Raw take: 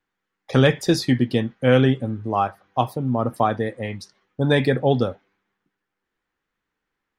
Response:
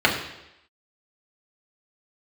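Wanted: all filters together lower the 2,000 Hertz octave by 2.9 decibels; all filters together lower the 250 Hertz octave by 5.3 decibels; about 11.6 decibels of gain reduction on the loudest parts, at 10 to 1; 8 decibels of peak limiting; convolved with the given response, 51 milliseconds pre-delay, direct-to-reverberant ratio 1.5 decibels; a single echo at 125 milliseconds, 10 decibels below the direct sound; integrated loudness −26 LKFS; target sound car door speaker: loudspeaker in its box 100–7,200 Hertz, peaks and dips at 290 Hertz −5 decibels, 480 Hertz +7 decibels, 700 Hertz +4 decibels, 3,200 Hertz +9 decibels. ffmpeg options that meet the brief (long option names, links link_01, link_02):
-filter_complex "[0:a]equalizer=frequency=250:width_type=o:gain=-4,equalizer=frequency=2000:width_type=o:gain=-4.5,acompressor=threshold=-25dB:ratio=10,alimiter=limit=-20dB:level=0:latency=1,aecho=1:1:125:0.316,asplit=2[link_01][link_02];[1:a]atrim=start_sample=2205,adelay=51[link_03];[link_02][link_03]afir=irnorm=-1:irlink=0,volume=-21.5dB[link_04];[link_01][link_04]amix=inputs=2:normalize=0,highpass=100,equalizer=frequency=290:width_type=q:width=4:gain=-5,equalizer=frequency=480:width_type=q:width=4:gain=7,equalizer=frequency=700:width_type=q:width=4:gain=4,equalizer=frequency=3200:width_type=q:width=4:gain=9,lowpass=frequency=7200:width=0.5412,lowpass=frequency=7200:width=1.3066,volume=3dB"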